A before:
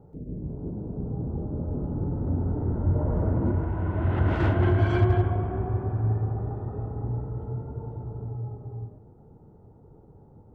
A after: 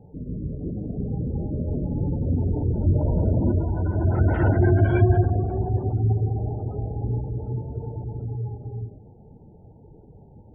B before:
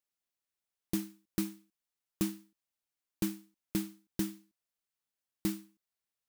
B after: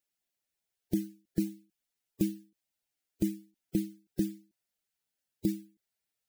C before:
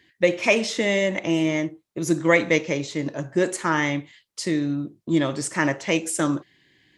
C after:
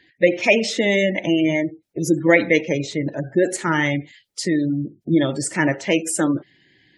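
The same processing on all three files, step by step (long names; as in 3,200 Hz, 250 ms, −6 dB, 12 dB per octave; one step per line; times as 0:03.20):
spectral magnitudes quantised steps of 15 dB
parametric band 1,100 Hz −10 dB 0.31 octaves
gate on every frequency bin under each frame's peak −30 dB strong
level +4 dB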